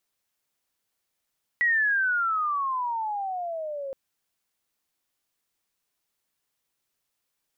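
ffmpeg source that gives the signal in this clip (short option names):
-f lavfi -i "aevalsrc='pow(10,(-19-12*t/2.32)/20)*sin(2*PI*1950*2.32/(-22.5*log(2)/12)*(exp(-22.5*log(2)/12*t/2.32)-1))':d=2.32:s=44100"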